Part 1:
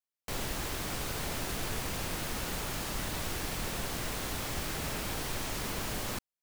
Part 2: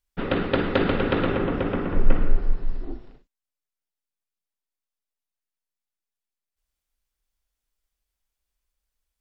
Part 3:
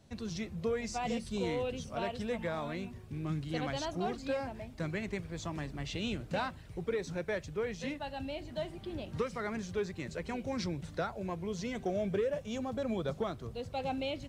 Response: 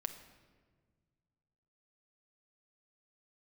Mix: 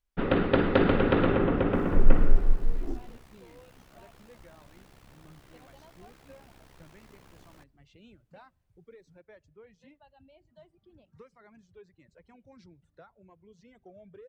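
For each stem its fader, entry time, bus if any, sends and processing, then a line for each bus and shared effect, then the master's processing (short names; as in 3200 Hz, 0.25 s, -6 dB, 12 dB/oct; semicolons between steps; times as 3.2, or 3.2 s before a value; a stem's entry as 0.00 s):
-16.0 dB, 1.45 s, send -17 dB, AM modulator 66 Hz, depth 75%
0.0 dB, 0.00 s, no send, dry
-17.5 dB, 2.00 s, send -23.5 dB, reverb removal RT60 2 s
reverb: on, RT60 1.6 s, pre-delay 6 ms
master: high shelf 3200 Hz -9 dB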